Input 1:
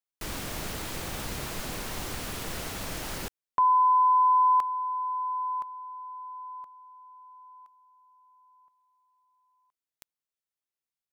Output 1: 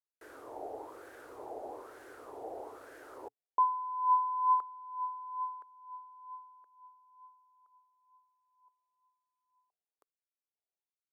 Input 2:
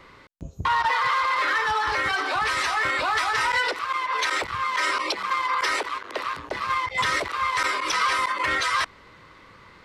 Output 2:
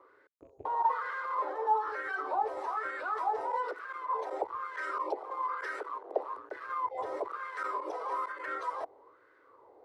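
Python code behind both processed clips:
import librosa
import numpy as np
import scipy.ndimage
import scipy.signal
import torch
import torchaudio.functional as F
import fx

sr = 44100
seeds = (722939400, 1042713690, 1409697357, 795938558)

y = fx.rattle_buzz(x, sr, strikes_db=-35.0, level_db=-36.0)
y = fx.wah_lfo(y, sr, hz=1.1, low_hz=750.0, high_hz=1600.0, q=6.1)
y = fx.curve_eq(y, sr, hz=(120.0, 180.0, 280.0, 430.0, 1100.0, 1900.0, 2600.0, 5500.0, 11000.0), db=(0, -19, 5, 11, -13, -16, -17, -9, 3))
y = y * 10.0 ** (8.5 / 20.0)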